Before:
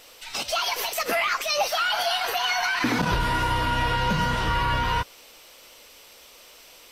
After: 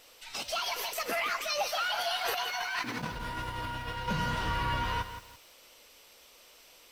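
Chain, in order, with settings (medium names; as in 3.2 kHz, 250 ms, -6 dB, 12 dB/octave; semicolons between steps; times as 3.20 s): 2.25–4.08 s: compressor with a negative ratio -27 dBFS, ratio -0.5; bit-crushed delay 169 ms, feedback 35%, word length 7-bit, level -10 dB; trim -7.5 dB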